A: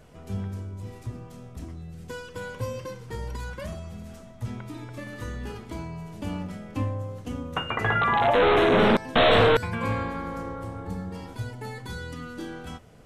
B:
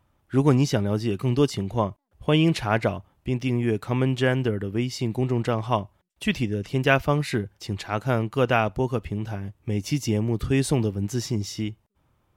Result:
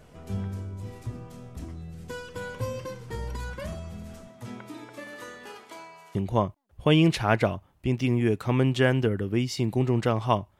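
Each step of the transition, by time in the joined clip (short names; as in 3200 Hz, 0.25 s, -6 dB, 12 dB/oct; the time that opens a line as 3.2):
A
4.27–6.15 HPF 160 Hz -> 970 Hz
6.15 switch to B from 1.57 s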